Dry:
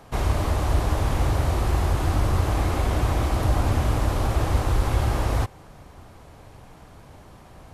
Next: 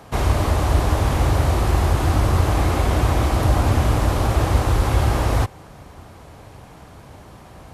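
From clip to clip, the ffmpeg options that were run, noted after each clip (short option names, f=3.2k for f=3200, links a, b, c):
-af "highpass=42,volume=5dB"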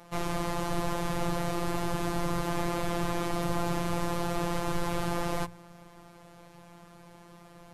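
-af "bandreject=f=60:t=h:w=6,bandreject=f=120:t=h:w=6,afftfilt=real='hypot(re,im)*cos(PI*b)':imag='0':win_size=1024:overlap=0.75,volume=-5dB"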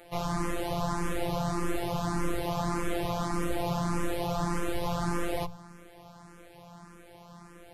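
-filter_complex "[0:a]asplit=2[a][b];[b]asoftclip=type=tanh:threshold=-26dB,volume=-8.5dB[c];[a][c]amix=inputs=2:normalize=0,asplit=2[d][e];[e]afreqshift=1.7[f];[d][f]amix=inputs=2:normalize=1,volume=1.5dB"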